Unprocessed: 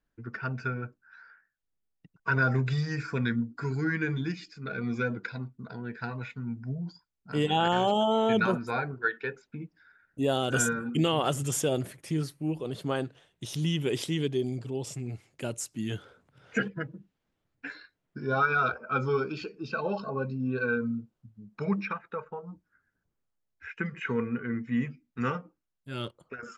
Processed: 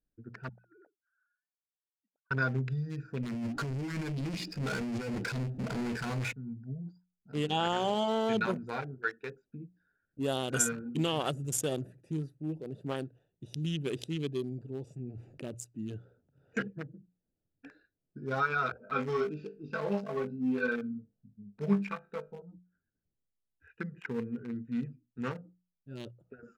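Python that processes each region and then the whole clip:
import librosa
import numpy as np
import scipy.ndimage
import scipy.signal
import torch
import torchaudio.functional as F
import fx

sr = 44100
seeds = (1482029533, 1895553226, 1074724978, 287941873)

y = fx.chain(x, sr, fx.sine_speech(),
    fx.ladder_bandpass(hz=750.0, resonance_pct=35),
    fx.over_compress(threshold_db=-50.0, ratio=-0.5), at=(0.49, 2.31))
y = fx.chain(y, sr, fx.over_compress(threshold_db=-37.0, ratio=-1.0),
    fx.power_curve(exponent=0.35),
    fx.air_absorb(metres=50.0), at=(3.23, 6.33))
y = fx.chain(y, sr, fx.high_shelf(hz=3200.0, db=-6.0),
    fx.env_flatten(amount_pct=50), at=(14.99, 15.55))
y = fx.chain(y, sr, fx.comb(ms=4.5, depth=0.35),
    fx.room_flutter(wall_m=3.4, rt60_s=0.26), at=(18.8, 22.42))
y = fx.wiener(y, sr, points=41)
y = fx.high_shelf(y, sr, hz=4500.0, db=9.0)
y = fx.hum_notches(y, sr, base_hz=60, count=3)
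y = y * 10.0 ** (-4.5 / 20.0)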